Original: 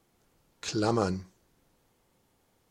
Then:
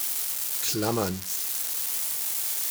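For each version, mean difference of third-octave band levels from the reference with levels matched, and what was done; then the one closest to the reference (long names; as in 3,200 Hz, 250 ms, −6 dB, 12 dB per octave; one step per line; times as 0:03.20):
9.5 dB: spike at every zero crossing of −20.5 dBFS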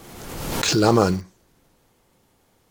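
4.5 dB: in parallel at −11.5 dB: bit-depth reduction 6 bits, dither none
on the sum: background raised ahead of every attack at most 36 dB per second
level +7.5 dB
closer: second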